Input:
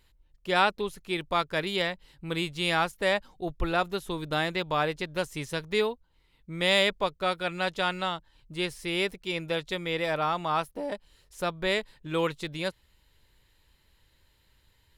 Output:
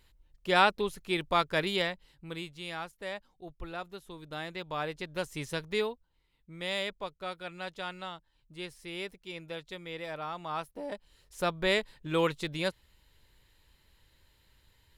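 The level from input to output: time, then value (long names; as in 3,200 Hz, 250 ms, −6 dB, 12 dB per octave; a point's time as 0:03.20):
0:01.67 0 dB
0:02.66 −13 dB
0:04.16 −13 dB
0:05.48 −2 dB
0:06.60 −10.5 dB
0:10.27 −10.5 dB
0:11.45 0 dB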